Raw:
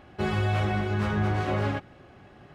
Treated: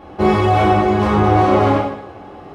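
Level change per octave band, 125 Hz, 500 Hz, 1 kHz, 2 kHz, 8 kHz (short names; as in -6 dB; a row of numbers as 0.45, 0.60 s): +7.5 dB, +16.0 dB, +17.5 dB, +8.0 dB, n/a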